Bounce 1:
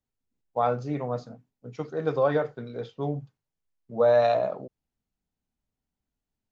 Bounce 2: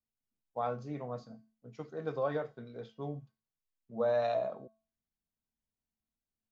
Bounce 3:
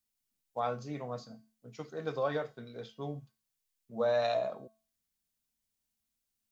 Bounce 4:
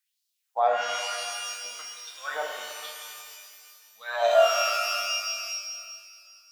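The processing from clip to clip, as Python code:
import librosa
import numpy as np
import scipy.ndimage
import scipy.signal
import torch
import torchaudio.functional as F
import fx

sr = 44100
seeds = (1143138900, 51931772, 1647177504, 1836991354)

y1 = fx.comb_fb(x, sr, f0_hz=220.0, decay_s=0.39, harmonics='odd', damping=0.0, mix_pct=70)
y2 = fx.high_shelf(y1, sr, hz=2500.0, db=11.5)
y3 = fx.filter_lfo_highpass(y2, sr, shape='sine', hz=1.1, low_hz=610.0, high_hz=4300.0, q=2.9)
y3 = fx.hum_notches(y3, sr, base_hz=60, count=10)
y3 = fx.rev_shimmer(y3, sr, seeds[0], rt60_s=2.1, semitones=12, shimmer_db=-2, drr_db=2.0)
y3 = y3 * librosa.db_to_amplitude(2.5)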